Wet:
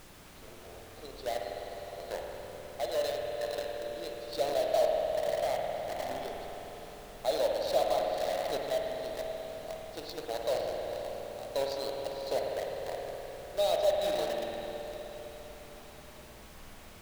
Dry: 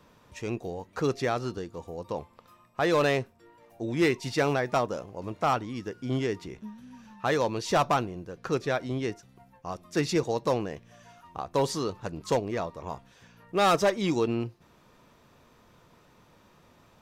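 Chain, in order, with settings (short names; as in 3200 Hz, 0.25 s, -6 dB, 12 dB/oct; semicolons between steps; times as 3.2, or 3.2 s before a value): double band-pass 1600 Hz, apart 2.7 oct; on a send: diffused feedback echo 0.519 s, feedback 45%, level -7 dB; on the sum: random-step tremolo; in parallel at -3.5 dB: requantised 6-bit, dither none; on the sum: added noise pink -53 dBFS; spring tank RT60 3.7 s, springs 51 ms, chirp 80 ms, DRR 0 dB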